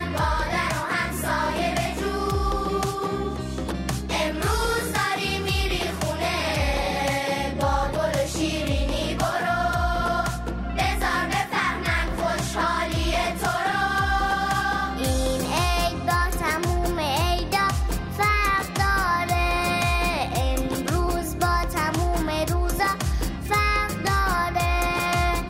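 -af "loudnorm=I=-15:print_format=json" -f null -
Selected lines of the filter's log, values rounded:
"input_i" : "-23.9",
"input_tp" : "-11.1",
"input_lra" : "2.0",
"input_thresh" : "-33.9",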